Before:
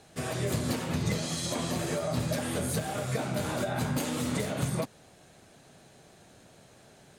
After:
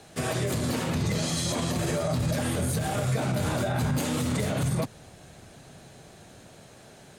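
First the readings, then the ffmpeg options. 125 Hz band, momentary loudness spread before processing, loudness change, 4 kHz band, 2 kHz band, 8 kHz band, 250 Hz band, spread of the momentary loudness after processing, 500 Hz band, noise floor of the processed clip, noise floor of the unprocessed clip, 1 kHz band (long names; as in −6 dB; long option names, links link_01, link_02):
+5.0 dB, 2 LU, +3.5 dB, +3.0 dB, +2.5 dB, +3.0 dB, +3.0 dB, 1 LU, +2.5 dB, −51 dBFS, −57 dBFS, +3.0 dB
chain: -filter_complex "[0:a]acrossover=split=140|2300[link_01][link_02][link_03];[link_01]dynaudnorm=framelen=250:gausssize=11:maxgain=7.5dB[link_04];[link_04][link_02][link_03]amix=inputs=3:normalize=0,alimiter=level_in=0.5dB:limit=-24dB:level=0:latency=1:release=39,volume=-0.5dB,volume=5.5dB"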